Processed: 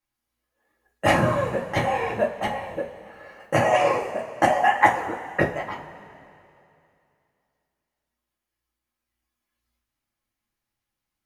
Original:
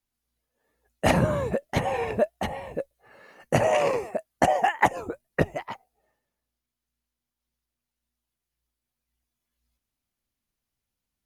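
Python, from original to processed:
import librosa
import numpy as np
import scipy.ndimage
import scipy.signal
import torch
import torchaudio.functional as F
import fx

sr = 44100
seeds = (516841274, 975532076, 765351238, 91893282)

y = fx.peak_eq(x, sr, hz=1300.0, db=7.0, octaves=1.9)
y = fx.rev_double_slope(y, sr, seeds[0], early_s=0.27, late_s=2.7, knee_db=-18, drr_db=-2.5)
y = y * librosa.db_to_amplitude(-5.0)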